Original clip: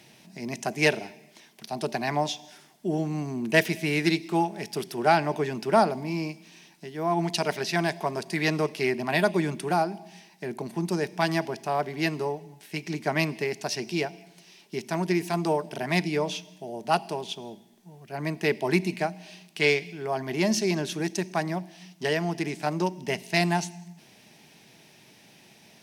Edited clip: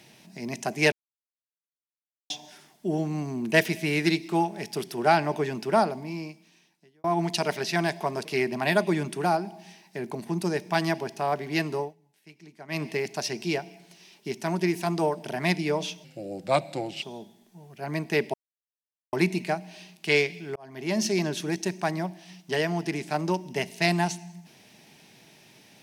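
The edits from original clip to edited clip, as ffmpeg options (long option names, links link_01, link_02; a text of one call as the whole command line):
ffmpeg -i in.wav -filter_complex "[0:a]asplit=11[link_01][link_02][link_03][link_04][link_05][link_06][link_07][link_08][link_09][link_10][link_11];[link_01]atrim=end=0.92,asetpts=PTS-STARTPTS,afade=type=out:start_time=0.916:duration=0.004:curve=hsin[link_12];[link_02]atrim=start=0.92:end=2.3,asetpts=PTS-STARTPTS,volume=0[link_13];[link_03]atrim=start=2.3:end=7.04,asetpts=PTS-STARTPTS,afade=type=in:duration=0.004:curve=hsin,afade=type=out:start_time=3.22:duration=1.52[link_14];[link_04]atrim=start=7.04:end=8.252,asetpts=PTS-STARTPTS,afade=type=in:duration=0.004:curve=hsin[link_15];[link_05]atrim=start=8.718:end=12.42,asetpts=PTS-STARTPTS,afade=type=out:start_time=3.552:duration=0.15:silence=0.125893[link_16];[link_06]atrim=start=12.42:end=13.15,asetpts=PTS-STARTPTS,volume=-18dB[link_17];[link_07]atrim=start=13.15:end=16.514,asetpts=PTS-STARTPTS,afade=type=in:duration=0.15:silence=0.125893[link_18];[link_08]atrim=start=16.51:end=17.34,asetpts=PTS-STARTPTS,asetrate=37044,aresample=44100[link_19];[link_09]atrim=start=17.336:end=18.65,asetpts=PTS-STARTPTS,afade=type=out:start_time=1.31:duration=0.004:curve=hsin,apad=pad_dur=0.79[link_20];[link_10]atrim=start=18.65:end=20.08,asetpts=PTS-STARTPTS,afade=type=in:duration=0.004:curve=hsin,afade=type=out:start_time=1.426:duration=0.004:curve=hsin[link_21];[link_11]atrim=start=20.08,asetpts=PTS-STARTPTS,afade=type=in:duration=0.52[link_22];[link_12][link_13][link_14][link_15]concat=n=4:v=0:a=1[link_23];[link_16][link_17][link_18]concat=n=3:v=0:a=1[link_24];[link_23][link_24]acrossfade=duration=0.004:curve1=hsin:curve2=hsin[link_25];[link_25][link_19]acrossfade=duration=0.004:curve1=hsin:curve2=hsin[link_26];[link_20][link_21][link_22]concat=n=3:v=0:a=1[link_27];[link_26][link_27]acrossfade=duration=0.004:curve1=hsin:curve2=hsin" out.wav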